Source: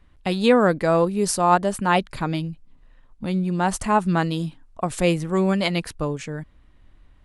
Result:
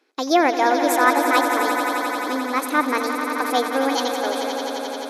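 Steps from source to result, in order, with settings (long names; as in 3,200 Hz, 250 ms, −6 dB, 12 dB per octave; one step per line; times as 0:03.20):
linear-phase brick-wall band-pass 180–9,100 Hz
notch filter 2,000 Hz, Q 7.7
on a send: echo that builds up and dies away 124 ms, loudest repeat 5, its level −10 dB
on the sum: change of speed 1.42×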